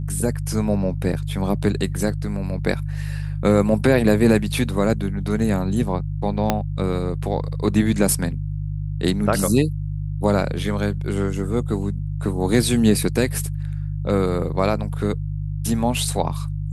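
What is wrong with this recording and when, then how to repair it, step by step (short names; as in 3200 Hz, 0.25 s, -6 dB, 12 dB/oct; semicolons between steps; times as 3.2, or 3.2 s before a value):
hum 50 Hz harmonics 3 -26 dBFS
6.5 pop -4 dBFS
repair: de-click; de-hum 50 Hz, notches 3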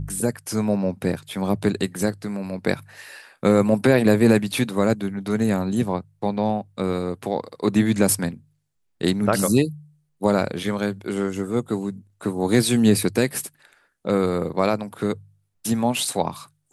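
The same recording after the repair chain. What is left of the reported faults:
6.5 pop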